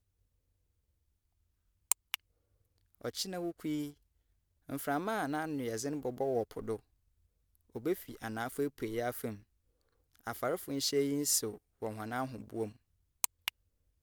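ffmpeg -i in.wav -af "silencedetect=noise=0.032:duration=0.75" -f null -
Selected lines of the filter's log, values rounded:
silence_start: 0.00
silence_end: 1.92 | silence_duration: 1.92
silence_start: 2.14
silence_end: 3.05 | silence_duration: 0.91
silence_start: 3.80
silence_end: 4.72 | silence_duration: 0.92
silence_start: 6.74
silence_end: 7.86 | silence_duration: 1.12
silence_start: 9.28
silence_end: 10.27 | silence_duration: 0.99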